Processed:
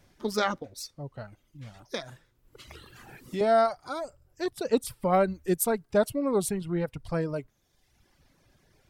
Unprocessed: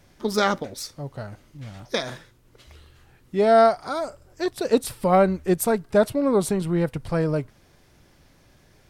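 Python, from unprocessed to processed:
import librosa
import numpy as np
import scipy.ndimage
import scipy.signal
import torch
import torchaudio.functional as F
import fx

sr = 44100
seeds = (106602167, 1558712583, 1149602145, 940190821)

y = fx.high_shelf(x, sr, hz=7200.0, db=6.5, at=(5.09, 6.6))
y = fx.dereverb_blind(y, sr, rt60_s=1.1)
y = fx.band_squash(y, sr, depth_pct=70, at=(1.92, 3.41))
y = y * librosa.db_to_amplitude(-5.0)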